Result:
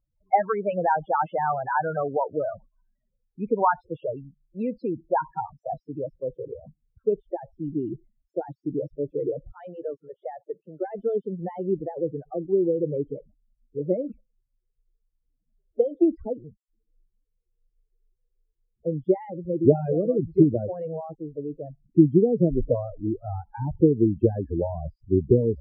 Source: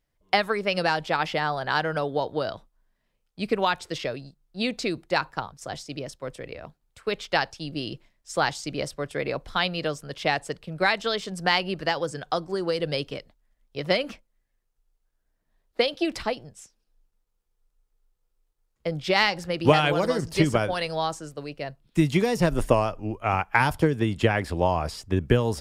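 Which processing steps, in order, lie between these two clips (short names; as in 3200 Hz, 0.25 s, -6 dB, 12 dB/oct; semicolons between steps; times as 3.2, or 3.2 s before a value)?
9.52–10.84 weighting filter A; loudest bins only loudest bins 8; low-pass sweep 1100 Hz -> 390 Hz, 5–6.58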